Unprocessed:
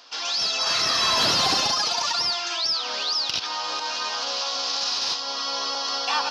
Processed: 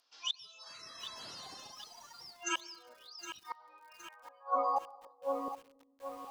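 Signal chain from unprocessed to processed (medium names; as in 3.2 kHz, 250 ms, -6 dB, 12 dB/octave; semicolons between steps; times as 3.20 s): spectral noise reduction 30 dB; inverted gate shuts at -26 dBFS, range -30 dB; low-pass sweep 10 kHz -> 130 Hz, 3.00–6.27 s; 2.12–2.94 s: small resonant body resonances 200/530 Hz, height 15 dB, ringing for 40 ms; reverberation RT60 1.1 s, pre-delay 93 ms, DRR 19.5 dB; bit-crushed delay 765 ms, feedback 55%, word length 9-bit, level -10 dB; trim +3 dB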